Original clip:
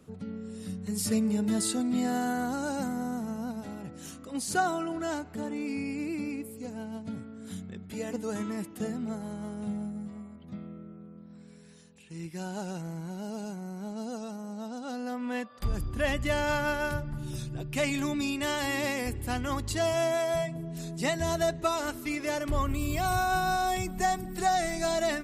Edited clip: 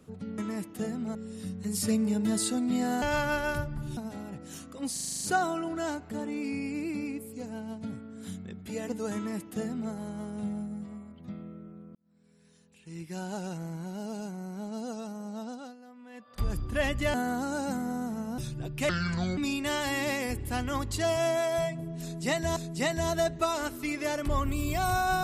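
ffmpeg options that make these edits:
ffmpeg -i in.wav -filter_complex "[0:a]asplit=20[link_01][link_02][link_03][link_04][link_05][link_06][link_07][link_08][link_09][link_10][link_11][link_12][link_13][link_14][link_15][link_16][link_17][link_18][link_19][link_20];[link_01]atrim=end=0.382[link_21];[link_02]atrim=start=8.388:end=9.162[link_22];[link_03]atrim=start=0.378:end=2.252[link_23];[link_04]atrim=start=16.378:end=17.332[link_24];[link_05]atrim=start=3.488:end=4.492[link_25];[link_06]atrim=start=4.448:end=4.492[link_26];[link_07]atrim=start=4.448:end=4.492[link_27];[link_08]atrim=start=4.448:end=4.492[link_28];[link_09]atrim=start=4.448:end=4.492[link_29];[link_10]atrim=start=4.448:end=4.492[link_30];[link_11]atrim=start=4.448:end=4.492[link_31];[link_12]atrim=start=4.448:end=11.19,asetpts=PTS-STARTPTS,afade=type=out:start_time=6.738:duration=0.004:curve=hsin[link_32];[link_13]atrim=start=11.19:end=15,asetpts=PTS-STARTPTS,afade=type=in:duration=1.25,afade=type=out:start_time=3.53:duration=0.28:silence=0.149624[link_33];[link_14]atrim=start=15:end=15.37,asetpts=PTS-STARTPTS,volume=-16.5dB[link_34];[link_15]atrim=start=15.37:end=16.382,asetpts=PTS-STARTPTS,afade=type=in:duration=0.28:silence=0.149624[link_35];[link_16]atrim=start=2.248:end=3.492[link_36];[link_17]atrim=start=17.328:end=17.844[link_37];[link_18]atrim=start=17.84:end=18.14,asetpts=PTS-STARTPTS,asetrate=27342,aresample=44100[link_38];[link_19]atrim=start=18.136:end=21.332[link_39];[link_20]atrim=start=20.788[link_40];[link_21][link_22]acrossfade=duration=0.004:curve1=hsin:curve2=hsin[link_41];[link_41][link_23]acrossfade=duration=0.004:curve1=hsin:curve2=hsin[link_42];[link_42][link_24]acrossfade=duration=0.004:curve1=hsin:curve2=hsin[link_43];[link_43][link_25]acrossfade=duration=0.004:curve1=hsin:curve2=hsin[link_44];[link_44][link_26]acrossfade=duration=0.004:curve1=hsin:curve2=hsin[link_45];[link_45][link_27]acrossfade=duration=0.004:curve1=hsin:curve2=hsin[link_46];[link_46][link_28]acrossfade=duration=0.004:curve1=hsin:curve2=hsin[link_47];[link_47][link_29]acrossfade=duration=0.004:curve1=hsin:curve2=hsin[link_48];[link_48][link_30]acrossfade=duration=0.004:curve1=hsin:curve2=hsin[link_49];[link_49][link_31]acrossfade=duration=0.004:curve1=hsin:curve2=hsin[link_50];[link_32][link_33][link_34][link_35]concat=n=4:v=0:a=1[link_51];[link_50][link_51]acrossfade=duration=0.004:curve1=hsin:curve2=hsin[link_52];[link_52][link_36]acrossfade=duration=0.004:curve1=hsin:curve2=hsin[link_53];[link_53][link_37]acrossfade=duration=0.004:curve1=hsin:curve2=hsin[link_54];[link_54][link_38]acrossfade=duration=0.004:curve1=hsin:curve2=hsin[link_55];[link_55][link_39]acrossfade=duration=0.004:curve1=hsin:curve2=hsin[link_56];[link_56][link_40]acrossfade=duration=0.004:curve1=hsin:curve2=hsin" out.wav

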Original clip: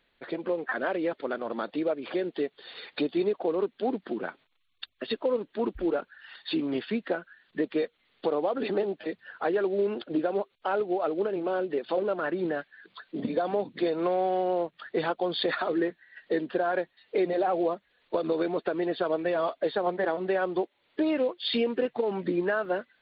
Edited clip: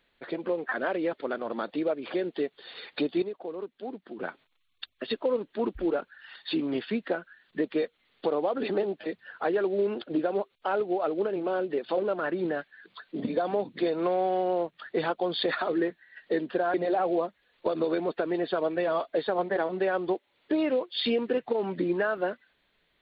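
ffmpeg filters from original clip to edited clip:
ffmpeg -i in.wav -filter_complex "[0:a]asplit=4[link_01][link_02][link_03][link_04];[link_01]atrim=end=3.222[link_05];[link_02]atrim=start=3.218:end=4.192,asetpts=PTS-STARTPTS,volume=-9dB[link_06];[link_03]atrim=start=4.188:end=16.742[link_07];[link_04]atrim=start=17.218[link_08];[link_05][link_06]acrossfade=duration=0.004:curve1=hsin:curve2=hsin[link_09];[link_09][link_07]acrossfade=duration=0.004:curve1=hsin:curve2=hsin[link_10];[link_10][link_08]acrossfade=duration=0.004:curve1=hsin:curve2=hsin" out.wav

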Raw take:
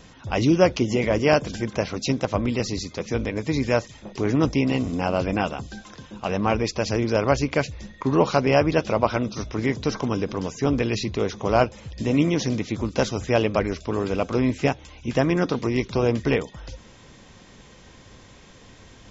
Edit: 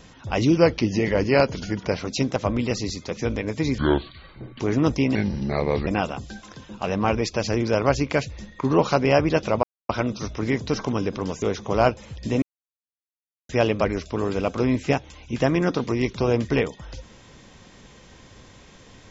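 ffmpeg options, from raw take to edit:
ffmpeg -i in.wav -filter_complex "[0:a]asplit=11[link_01][link_02][link_03][link_04][link_05][link_06][link_07][link_08][link_09][link_10][link_11];[link_01]atrim=end=0.574[link_12];[link_02]atrim=start=0.57:end=1.84,asetpts=PTS-STARTPTS,asetrate=40572,aresample=44100,atrim=end_sample=60877,asetpts=PTS-STARTPTS[link_13];[link_03]atrim=start=1.836:end=3.674[link_14];[link_04]atrim=start=3.67:end=4.17,asetpts=PTS-STARTPTS,asetrate=26901,aresample=44100[link_15];[link_05]atrim=start=4.166:end=4.724[link_16];[link_06]atrim=start=4.72:end=5.29,asetpts=PTS-STARTPTS,asetrate=34839,aresample=44100[link_17];[link_07]atrim=start=5.286:end=9.05,asetpts=PTS-STARTPTS,afade=type=out:start_time=3.76:duration=0.004:curve=hsin,apad=pad_dur=0.26[link_18];[link_08]atrim=start=9.05:end=10.582,asetpts=PTS-STARTPTS,afade=type=in:duration=0.004:curve=hsin[link_19];[link_09]atrim=start=11.168:end=12.17,asetpts=PTS-STARTPTS,afade=type=out:start_time=0.998:duration=0.004:curve=hsin[link_20];[link_10]atrim=start=12.17:end=13.24,asetpts=PTS-STARTPTS,volume=0[link_21];[link_11]atrim=start=13.24,asetpts=PTS-STARTPTS,afade=type=in:duration=0.004:curve=hsin[link_22];[link_12][link_13]acrossfade=duration=0.004:curve1=hsin:curve2=hsin[link_23];[link_23][link_14]acrossfade=duration=0.004:curve1=hsin:curve2=hsin[link_24];[link_24][link_15]acrossfade=duration=0.004:curve1=hsin:curve2=hsin[link_25];[link_25][link_16]acrossfade=duration=0.004:curve1=hsin:curve2=hsin[link_26];[link_26][link_17]acrossfade=duration=0.004:curve1=hsin:curve2=hsin[link_27];[link_18][link_19]concat=n=2:v=0:a=1[link_28];[link_27][link_28]acrossfade=duration=0.004:curve1=hsin:curve2=hsin[link_29];[link_20][link_21][link_22]concat=n=3:v=0:a=1[link_30];[link_29][link_30]acrossfade=duration=0.004:curve1=hsin:curve2=hsin" out.wav

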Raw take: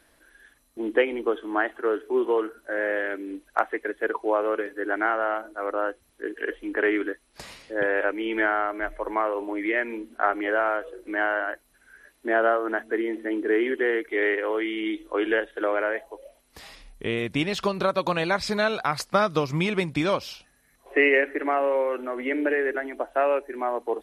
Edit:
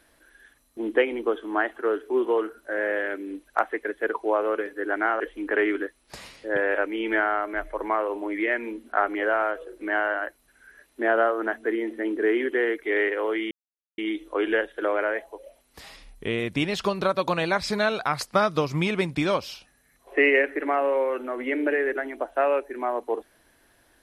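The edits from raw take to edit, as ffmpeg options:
ffmpeg -i in.wav -filter_complex "[0:a]asplit=3[link_01][link_02][link_03];[link_01]atrim=end=5.202[link_04];[link_02]atrim=start=6.458:end=14.77,asetpts=PTS-STARTPTS,afade=type=out:start_time=8.308:duration=0.004:curve=hsin,apad=pad_dur=0.47[link_05];[link_03]atrim=start=14.77,asetpts=PTS-STARTPTS,afade=type=in:duration=0.004:curve=hsin[link_06];[link_05][link_06]concat=n=2:v=0:a=1[link_07];[link_04][link_07]acrossfade=duration=0.004:curve1=hsin:curve2=hsin" out.wav

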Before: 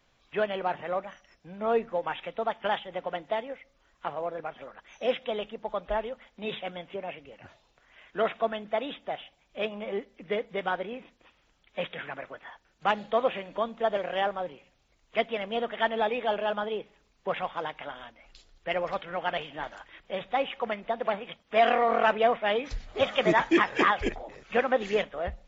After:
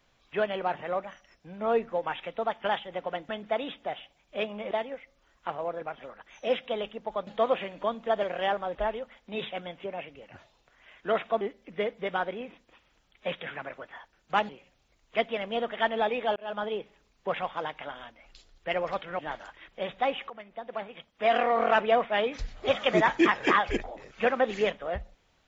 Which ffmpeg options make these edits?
ffmpeg -i in.wav -filter_complex "[0:a]asplit=10[link_01][link_02][link_03][link_04][link_05][link_06][link_07][link_08][link_09][link_10];[link_01]atrim=end=3.292[link_11];[link_02]atrim=start=8.508:end=9.932[link_12];[link_03]atrim=start=3.288:end=5.852[link_13];[link_04]atrim=start=13.008:end=14.492[link_14];[link_05]atrim=start=5.848:end=8.512[link_15];[link_06]atrim=start=9.928:end=13.012[link_16];[link_07]atrim=start=14.488:end=16.36,asetpts=PTS-STARTPTS,afade=type=out:start_time=1.868:duration=0.004:curve=hsin[link_17];[link_08]atrim=start=16.36:end=19.192,asetpts=PTS-STARTPTS,afade=type=in:duration=0.28[link_18];[link_09]atrim=start=19.508:end=20.62,asetpts=PTS-STARTPTS,afade=type=out:start_time=1.108:duration=0.004:curve=hsin:silence=0.16788[link_19];[link_10]atrim=start=20.62,asetpts=PTS-STARTPTS,afade=type=in:duration=1.38:silence=0.16788[link_20];[link_11][link_12]acrossfade=duration=0.004:curve1=hsin:curve2=hsin[link_21];[link_21][link_13]acrossfade=duration=0.004:curve1=hsin:curve2=hsin[link_22];[link_22][link_14]acrossfade=duration=0.004:curve1=hsin:curve2=hsin[link_23];[link_23][link_15]acrossfade=duration=0.004:curve1=hsin:curve2=hsin[link_24];[link_24][link_16]acrossfade=duration=0.004:curve1=hsin:curve2=hsin[link_25];[link_17][link_18]concat=n=2:v=0:a=1[link_26];[link_25][link_26]acrossfade=duration=0.004:curve1=hsin:curve2=hsin[link_27];[link_19][link_20]concat=n=2:v=0:a=1[link_28];[link_27][link_28]acrossfade=duration=0.004:curve1=hsin:curve2=hsin" out.wav

